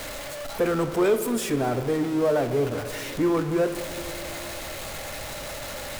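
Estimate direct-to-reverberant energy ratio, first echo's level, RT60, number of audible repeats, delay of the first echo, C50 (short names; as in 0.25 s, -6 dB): 9.0 dB, none, 2.3 s, none, none, 10.5 dB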